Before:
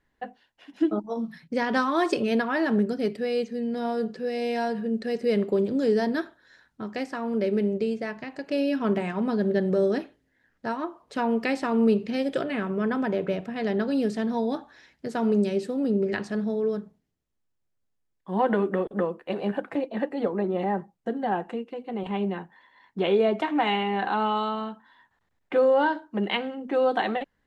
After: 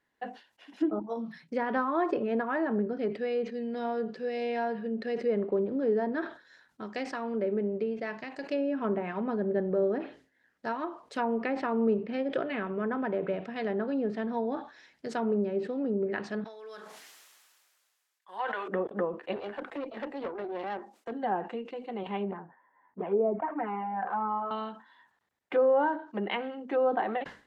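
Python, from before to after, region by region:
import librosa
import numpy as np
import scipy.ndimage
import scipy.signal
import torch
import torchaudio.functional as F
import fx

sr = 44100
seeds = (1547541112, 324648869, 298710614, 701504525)

y = fx.chain(x, sr, fx.highpass(hz=1100.0, slope=12),
    fx.sustainer(db_per_s=27.0), at=(16.44, 18.68))
y = fx.chain(y, sr, fx.steep_highpass(hz=220.0, slope=96),
    fx.tube_stage(drive_db=26.0, bias=0.7), at=(19.36, 21.12))
y = fx.chain(y, sr, fx.lowpass(hz=1500.0, slope=24),
    fx.env_flanger(rest_ms=11.7, full_db=-18.0), at=(22.31, 24.51))
y = fx.env_lowpass_down(y, sr, base_hz=1300.0, full_db=-21.0)
y = fx.highpass(y, sr, hz=320.0, slope=6)
y = fx.sustainer(y, sr, db_per_s=140.0)
y = y * 10.0 ** (-2.0 / 20.0)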